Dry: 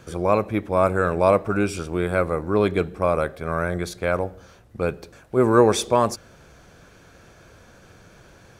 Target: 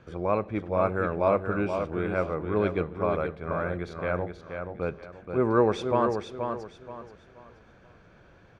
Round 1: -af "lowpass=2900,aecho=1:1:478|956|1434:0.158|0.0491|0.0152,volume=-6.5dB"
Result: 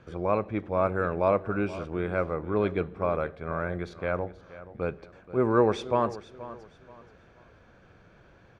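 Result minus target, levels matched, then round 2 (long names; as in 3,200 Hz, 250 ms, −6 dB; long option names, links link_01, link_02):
echo-to-direct −9.5 dB
-af "lowpass=2900,aecho=1:1:478|956|1434|1912:0.473|0.147|0.0455|0.0141,volume=-6.5dB"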